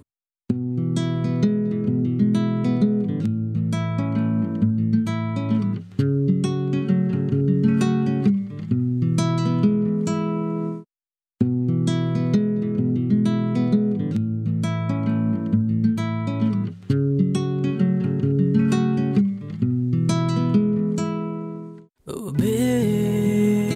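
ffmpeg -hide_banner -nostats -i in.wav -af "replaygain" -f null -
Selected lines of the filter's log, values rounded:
track_gain = +3.7 dB
track_peak = 0.274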